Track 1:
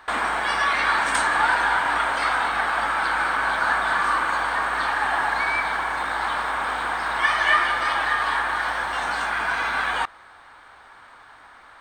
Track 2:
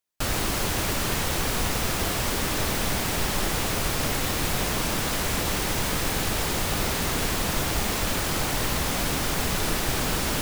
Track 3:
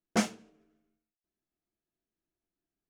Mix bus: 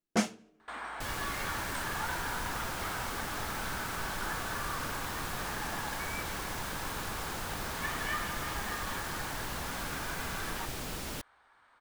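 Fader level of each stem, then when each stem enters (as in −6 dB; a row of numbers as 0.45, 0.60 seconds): −17.0, −13.0, −1.0 decibels; 0.60, 0.80, 0.00 seconds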